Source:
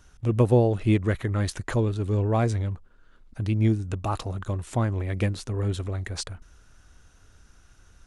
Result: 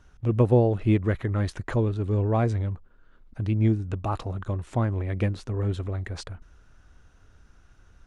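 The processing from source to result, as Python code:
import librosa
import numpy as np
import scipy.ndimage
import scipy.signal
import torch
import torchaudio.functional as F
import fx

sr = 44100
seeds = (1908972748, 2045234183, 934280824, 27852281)

y = fx.lowpass(x, sr, hz=2300.0, slope=6)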